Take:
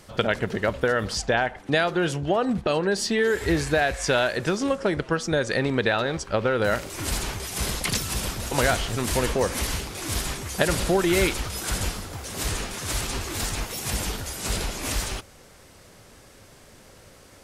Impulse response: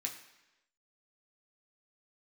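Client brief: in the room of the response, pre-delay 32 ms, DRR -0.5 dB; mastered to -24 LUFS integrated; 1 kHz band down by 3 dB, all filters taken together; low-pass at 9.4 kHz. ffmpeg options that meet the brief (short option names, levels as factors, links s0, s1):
-filter_complex "[0:a]lowpass=9400,equalizer=f=1000:t=o:g=-4.5,asplit=2[s0][s1];[1:a]atrim=start_sample=2205,adelay=32[s2];[s1][s2]afir=irnorm=-1:irlink=0,volume=1.06[s3];[s0][s3]amix=inputs=2:normalize=0,volume=0.944"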